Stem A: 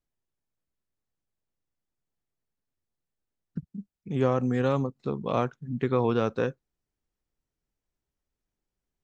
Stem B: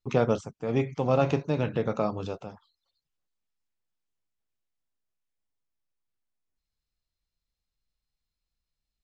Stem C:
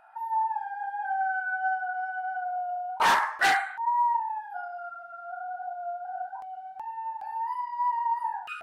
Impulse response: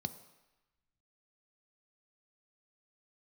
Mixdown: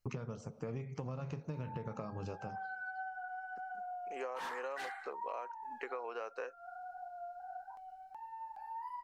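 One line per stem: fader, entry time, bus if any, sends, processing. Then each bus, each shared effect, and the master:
-0.5 dB, 0.00 s, bus A, no send, HPF 520 Hz 24 dB/oct
+2.5 dB, 0.00 s, bus A, send -15.5 dB, dry
-11.5 dB, 1.35 s, no bus, no send, dry
bus A: 0.0 dB, Butterworth band-stop 3500 Hz, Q 3.2; compressor 4:1, threshold -25 dBFS, peak gain reduction 9 dB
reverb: on, RT60 1.0 s, pre-delay 3 ms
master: compressor 6:1, threshold -39 dBFS, peak gain reduction 16 dB

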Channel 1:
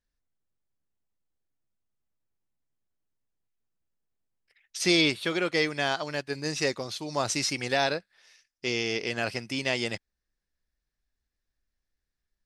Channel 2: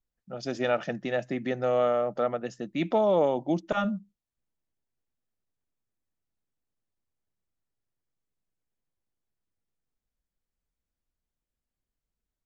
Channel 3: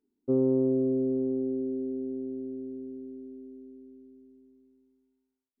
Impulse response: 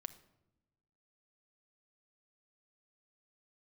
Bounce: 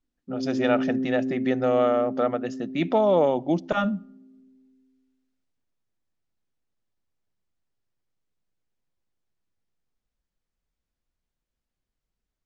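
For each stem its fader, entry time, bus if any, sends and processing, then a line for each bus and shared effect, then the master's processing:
off
+1.5 dB, 0.00 s, send -9 dB, dry
-5.5 dB, 0.00 s, no send, HPF 220 Hz 12 dB/oct; band shelf 640 Hz -15.5 dB; AGC gain up to 11 dB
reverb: on, RT60 0.95 s, pre-delay 5 ms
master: LPF 6600 Hz 12 dB/oct

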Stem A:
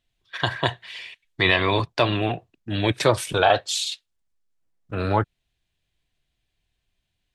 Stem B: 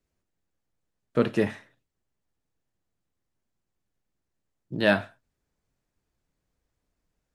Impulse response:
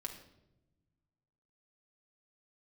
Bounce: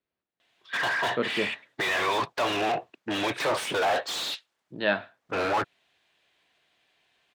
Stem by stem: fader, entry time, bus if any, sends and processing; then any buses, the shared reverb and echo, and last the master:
-11.0 dB, 0.40 s, no send, overdrive pedal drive 37 dB, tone 1300 Hz, clips at -4 dBFS
-2.0 dB, 0.00 s, no send, steep low-pass 4300 Hz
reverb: off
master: HPF 420 Hz 6 dB/oct

